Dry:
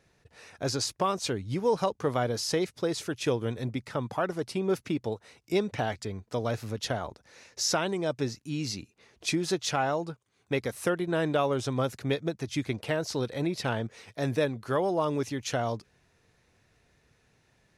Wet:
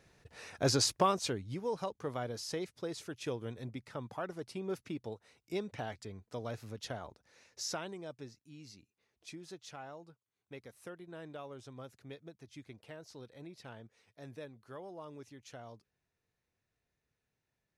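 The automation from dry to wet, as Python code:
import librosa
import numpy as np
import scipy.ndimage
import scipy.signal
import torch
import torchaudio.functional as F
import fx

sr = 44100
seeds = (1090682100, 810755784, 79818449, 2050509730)

y = fx.gain(x, sr, db=fx.line((0.94, 1.0), (1.63, -10.5), (7.63, -10.5), (8.44, -20.0)))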